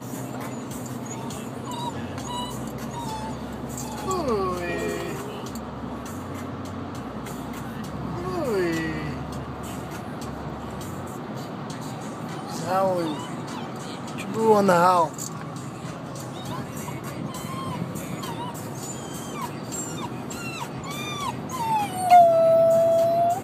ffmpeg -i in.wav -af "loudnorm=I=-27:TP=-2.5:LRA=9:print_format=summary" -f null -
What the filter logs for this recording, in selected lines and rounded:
Input Integrated:    -25.2 LUFS
Input True Peak:      -5.3 dBTP
Input LRA:            12.0 LU
Input Threshold:     -35.2 LUFS